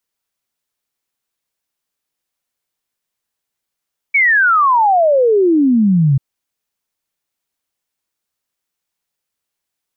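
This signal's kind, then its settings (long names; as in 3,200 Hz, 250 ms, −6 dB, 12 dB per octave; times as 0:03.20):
exponential sine sweep 2,300 Hz → 130 Hz 2.04 s −8.5 dBFS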